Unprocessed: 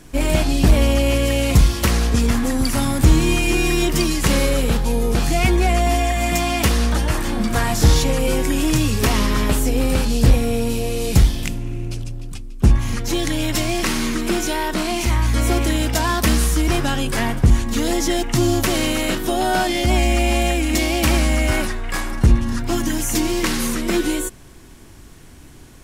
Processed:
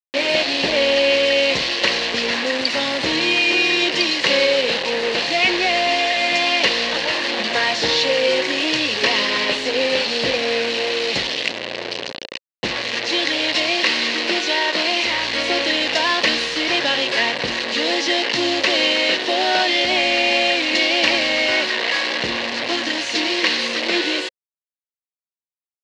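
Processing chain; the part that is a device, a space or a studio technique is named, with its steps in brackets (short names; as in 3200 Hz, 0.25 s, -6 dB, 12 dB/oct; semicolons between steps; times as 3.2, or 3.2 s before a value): hand-held game console (bit-crush 4-bit; speaker cabinet 460–5000 Hz, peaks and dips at 530 Hz +6 dB, 790 Hz -3 dB, 1300 Hz -8 dB, 1900 Hz +6 dB, 2800 Hz +7 dB, 4200 Hz +8 dB); gain +2 dB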